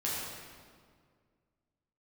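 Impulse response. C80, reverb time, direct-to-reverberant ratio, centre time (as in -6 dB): 0.0 dB, 2.0 s, -7.0 dB, 117 ms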